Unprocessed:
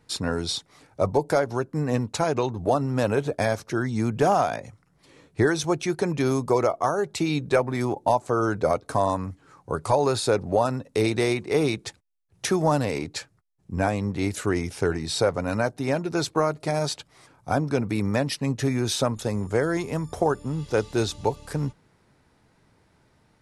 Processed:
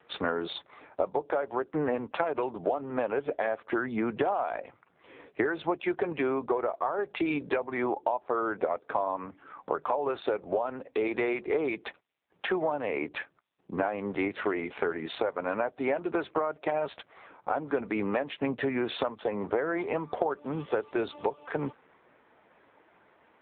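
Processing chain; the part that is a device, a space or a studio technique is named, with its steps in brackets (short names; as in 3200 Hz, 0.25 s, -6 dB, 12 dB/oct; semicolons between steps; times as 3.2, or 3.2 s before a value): voicemail (BPF 400–2800 Hz; compressor 12:1, threshold -33 dBFS, peak gain reduction 17 dB; gain +9 dB; AMR-NB 5.9 kbps 8000 Hz)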